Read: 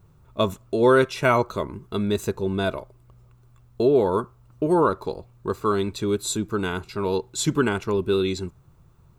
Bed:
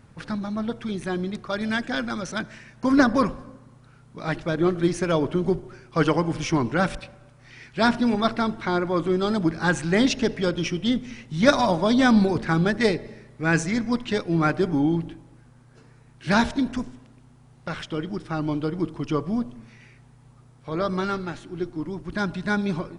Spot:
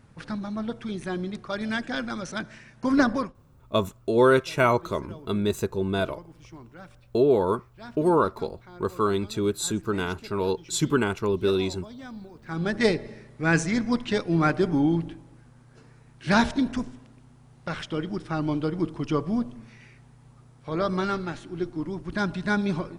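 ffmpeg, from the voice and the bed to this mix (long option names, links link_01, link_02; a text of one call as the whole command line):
ffmpeg -i stem1.wav -i stem2.wav -filter_complex "[0:a]adelay=3350,volume=-1.5dB[link_01];[1:a]volume=20dB,afade=type=out:start_time=3.1:duration=0.23:silence=0.0944061,afade=type=in:start_time=12.42:duration=0.44:silence=0.0707946[link_02];[link_01][link_02]amix=inputs=2:normalize=0" out.wav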